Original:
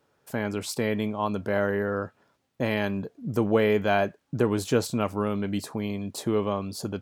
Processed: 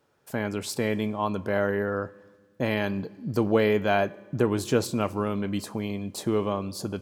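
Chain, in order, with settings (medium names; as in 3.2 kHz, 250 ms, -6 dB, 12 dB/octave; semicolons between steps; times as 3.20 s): 2.88–3.69 s: peaking EQ 4.5 kHz +14.5 dB 0.22 oct; reverberation RT60 1.6 s, pre-delay 3 ms, DRR 19 dB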